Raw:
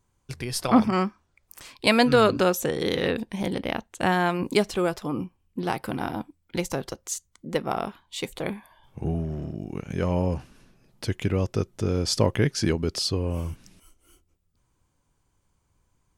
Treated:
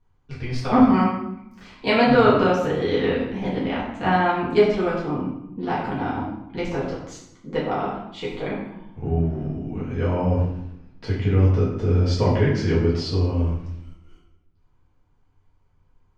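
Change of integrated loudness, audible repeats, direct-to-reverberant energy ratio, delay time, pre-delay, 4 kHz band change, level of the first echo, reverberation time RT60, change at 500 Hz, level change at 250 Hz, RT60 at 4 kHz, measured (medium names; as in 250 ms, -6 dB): +4.0 dB, no echo, -8.5 dB, no echo, 4 ms, -3.0 dB, no echo, 0.80 s, +4.0 dB, +4.0 dB, 0.60 s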